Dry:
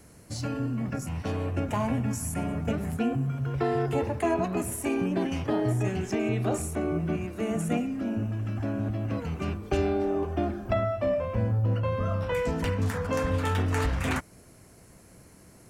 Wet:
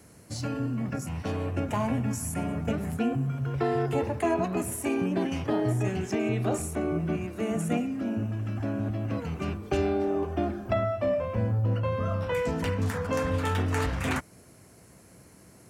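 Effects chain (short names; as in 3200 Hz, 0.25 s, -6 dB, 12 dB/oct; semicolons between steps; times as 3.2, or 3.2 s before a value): HPF 69 Hz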